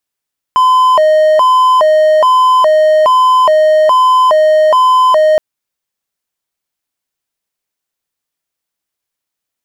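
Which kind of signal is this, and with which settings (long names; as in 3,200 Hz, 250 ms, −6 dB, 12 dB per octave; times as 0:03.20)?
siren hi-lo 620–1,020 Hz 1.2 per second triangle −3 dBFS 4.82 s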